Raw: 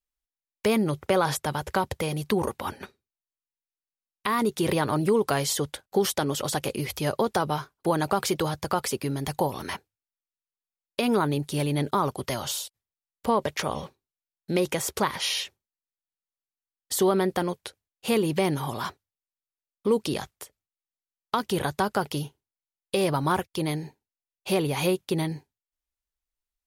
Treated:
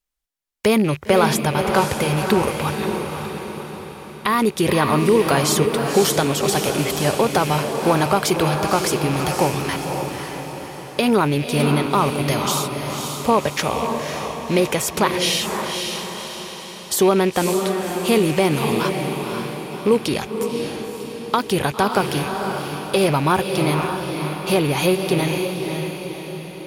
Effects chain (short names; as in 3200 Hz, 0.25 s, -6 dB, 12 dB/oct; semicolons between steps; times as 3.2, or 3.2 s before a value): rattling part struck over -41 dBFS, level -29 dBFS; vibrato 15 Hz 10 cents; diffused feedback echo 0.545 s, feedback 52%, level -5 dB; gain +6.5 dB